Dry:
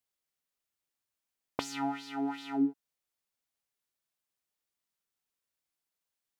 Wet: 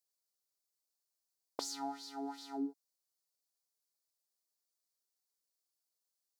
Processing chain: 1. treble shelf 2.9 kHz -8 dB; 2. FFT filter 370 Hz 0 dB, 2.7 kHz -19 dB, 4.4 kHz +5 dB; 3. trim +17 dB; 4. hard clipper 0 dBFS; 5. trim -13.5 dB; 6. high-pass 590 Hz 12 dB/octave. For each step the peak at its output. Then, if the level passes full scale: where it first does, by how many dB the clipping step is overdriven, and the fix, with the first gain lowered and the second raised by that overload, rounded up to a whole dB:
-15.5 dBFS, -19.0 dBFS, -2.0 dBFS, -2.0 dBFS, -15.5 dBFS, -22.0 dBFS; nothing clips

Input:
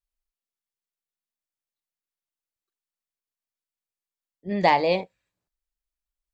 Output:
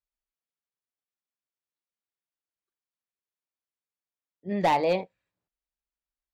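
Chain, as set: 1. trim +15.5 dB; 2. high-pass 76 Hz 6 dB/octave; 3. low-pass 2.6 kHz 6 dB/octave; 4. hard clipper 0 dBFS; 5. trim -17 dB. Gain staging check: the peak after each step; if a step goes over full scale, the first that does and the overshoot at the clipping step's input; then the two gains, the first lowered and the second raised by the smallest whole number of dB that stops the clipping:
+8.5 dBFS, +9.0 dBFS, +8.0 dBFS, 0.0 dBFS, -17.0 dBFS; step 1, 8.0 dB; step 1 +7.5 dB, step 5 -9 dB

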